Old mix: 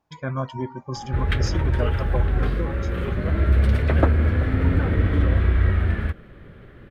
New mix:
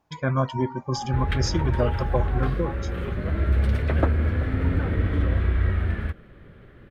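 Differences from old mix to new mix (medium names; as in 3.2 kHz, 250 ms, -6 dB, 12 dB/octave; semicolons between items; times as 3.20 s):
speech +4.0 dB; background -3.5 dB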